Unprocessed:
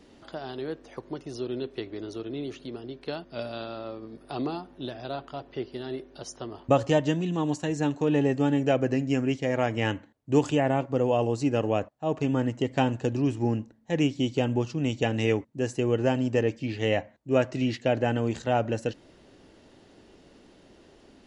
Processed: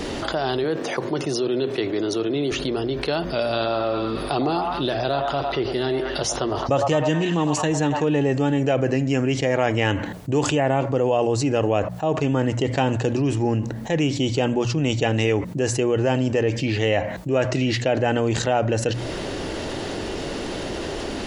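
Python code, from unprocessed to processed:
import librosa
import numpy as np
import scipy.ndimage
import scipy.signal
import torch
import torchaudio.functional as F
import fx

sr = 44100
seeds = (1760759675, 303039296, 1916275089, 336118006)

y = fx.highpass(x, sr, hz=120.0, slope=24, at=(0.64, 2.52))
y = fx.echo_stepped(y, sr, ms=104, hz=860.0, octaves=0.7, feedback_pct=70, wet_db=-4.5, at=(3.43, 8.04))
y = fx.peak_eq(y, sr, hz=240.0, db=-5.0, octaves=0.67)
y = fx.hum_notches(y, sr, base_hz=60, count=3)
y = fx.env_flatten(y, sr, amount_pct=70)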